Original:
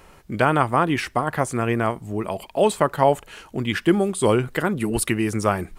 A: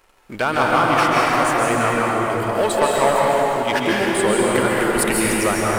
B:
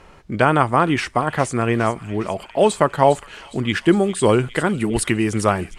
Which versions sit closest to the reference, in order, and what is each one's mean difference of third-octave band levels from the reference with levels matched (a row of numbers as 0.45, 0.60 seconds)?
B, A; 2.0, 11.0 decibels